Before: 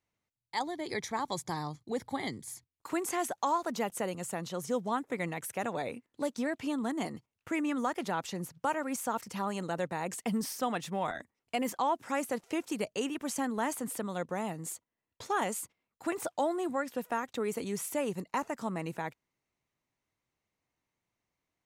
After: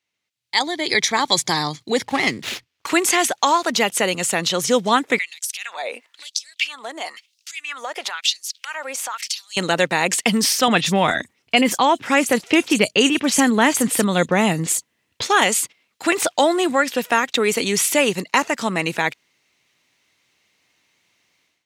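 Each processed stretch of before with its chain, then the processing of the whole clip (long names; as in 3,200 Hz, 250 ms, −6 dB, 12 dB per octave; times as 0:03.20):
0:02.05–0:02.87: parametric band 3,800 Hz −12 dB 0.4 octaves + windowed peak hold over 5 samples
0:05.18–0:09.57: downward compressor 12 to 1, threshold −43 dBFS + auto-filter high-pass sine 1 Hz 540–5,400 Hz
0:10.68–0:15.22: low-shelf EQ 220 Hz +11.5 dB + multiband delay without the direct sound lows, highs 30 ms, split 4,700 Hz
whole clip: meter weighting curve D; automatic gain control gain up to 16 dB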